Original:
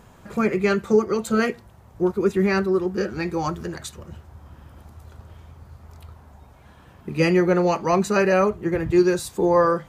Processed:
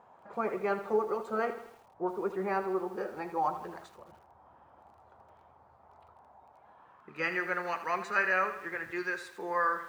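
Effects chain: band-pass sweep 820 Hz -> 1700 Hz, 6.74–7.35; lo-fi delay 80 ms, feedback 55%, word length 9-bit, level -11 dB

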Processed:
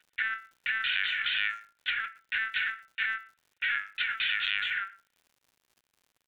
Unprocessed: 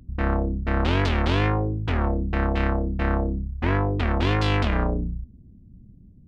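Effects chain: steep high-pass 1400 Hz 96 dB/oct; high shelf 2300 Hz +5.5 dB; compressor 4:1, threshold -33 dBFS, peak gain reduction 8.5 dB; LPC vocoder at 8 kHz pitch kept; speakerphone echo 0.12 s, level -21 dB; crackle 140/s -58 dBFS; gain +6.5 dB

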